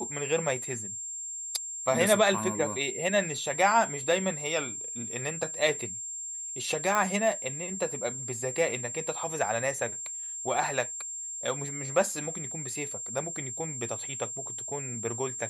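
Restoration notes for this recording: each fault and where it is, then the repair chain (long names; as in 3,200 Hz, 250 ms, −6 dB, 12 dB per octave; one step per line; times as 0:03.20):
whistle 7,400 Hz −35 dBFS
0:06.95: click −14 dBFS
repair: click removal
notch filter 7,400 Hz, Q 30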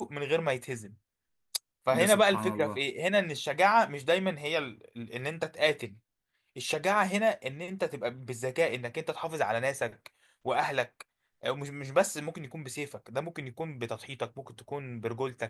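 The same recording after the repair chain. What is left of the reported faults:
none of them is left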